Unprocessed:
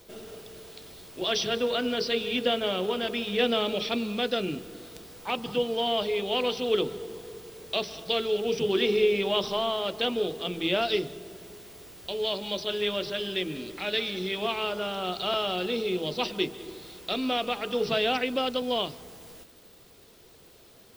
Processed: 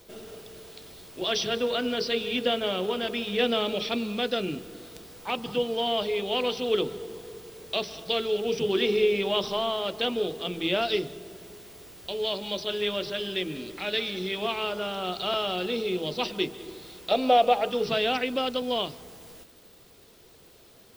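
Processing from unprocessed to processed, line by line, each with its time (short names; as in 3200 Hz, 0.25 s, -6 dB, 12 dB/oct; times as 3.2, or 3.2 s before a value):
17.11–17.7 band shelf 650 Hz +12 dB 1 oct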